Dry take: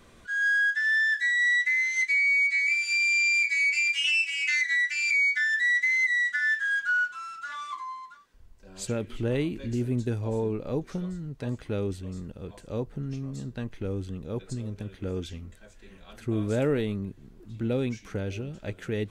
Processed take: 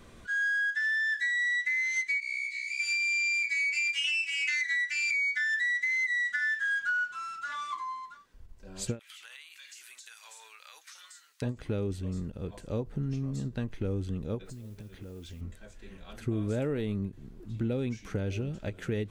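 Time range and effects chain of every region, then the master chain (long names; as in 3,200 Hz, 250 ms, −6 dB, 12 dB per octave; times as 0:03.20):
0:02.20–0:02.80: inverse Chebyshev high-pass filter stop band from 810 Hz, stop band 60 dB + micro pitch shift up and down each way 49 cents
0:08.99–0:11.42: high-pass filter 1,300 Hz 24 dB per octave + high-shelf EQ 2,700 Hz +11.5 dB + downward compressor 5 to 1, threshold −46 dBFS
0:14.45–0:15.41: noise that follows the level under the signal 21 dB + downward compressor 8 to 1, threshold −43 dBFS
whole clip: low-shelf EQ 320 Hz +3.5 dB; downward compressor, threshold −27 dBFS; every ending faded ahead of time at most 280 dB per second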